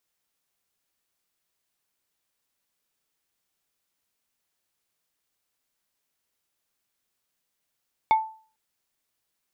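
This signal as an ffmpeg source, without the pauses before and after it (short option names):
-f lavfi -i "aevalsrc='0.224*pow(10,-3*t/0.41)*sin(2*PI*880*t)+0.0631*pow(10,-3*t/0.137)*sin(2*PI*2200*t)+0.0178*pow(10,-3*t/0.078)*sin(2*PI*3520*t)+0.00501*pow(10,-3*t/0.059)*sin(2*PI*4400*t)+0.00141*pow(10,-3*t/0.043)*sin(2*PI*5720*t)':d=0.45:s=44100"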